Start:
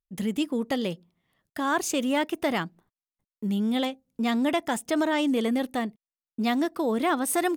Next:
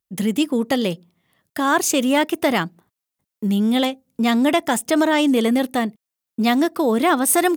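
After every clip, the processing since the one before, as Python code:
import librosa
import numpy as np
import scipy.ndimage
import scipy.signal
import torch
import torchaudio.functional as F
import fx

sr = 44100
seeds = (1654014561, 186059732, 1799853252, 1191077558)

y = scipy.signal.sosfilt(scipy.signal.butter(2, 69.0, 'highpass', fs=sr, output='sos'), x)
y = fx.high_shelf(y, sr, hz=8200.0, db=5.5)
y = y * librosa.db_to_amplitude(7.5)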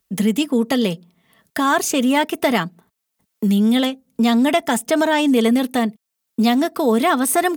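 y = x + 0.41 * np.pad(x, (int(4.5 * sr / 1000.0), 0))[:len(x)]
y = fx.band_squash(y, sr, depth_pct=40)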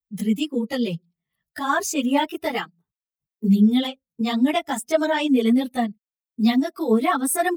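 y = fx.bin_expand(x, sr, power=1.5)
y = fx.chorus_voices(y, sr, voices=4, hz=1.1, base_ms=16, depth_ms=3.5, mix_pct=70)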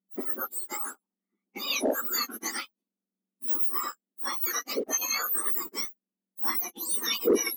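y = fx.octave_mirror(x, sr, pivot_hz=2000.0)
y = fx.leveller(y, sr, passes=1)
y = y * librosa.db_to_amplitude(-6.5)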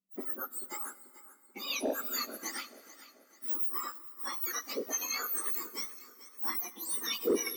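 y = fx.echo_feedback(x, sr, ms=437, feedback_pct=42, wet_db=-16.5)
y = fx.rev_plate(y, sr, seeds[0], rt60_s=3.4, hf_ratio=0.75, predelay_ms=0, drr_db=16.5)
y = y * librosa.db_to_amplitude(-6.0)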